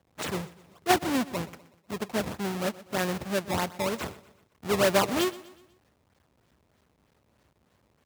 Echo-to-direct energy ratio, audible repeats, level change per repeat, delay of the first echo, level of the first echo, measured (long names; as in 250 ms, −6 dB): −17.5 dB, 3, −7.0 dB, 123 ms, −18.5 dB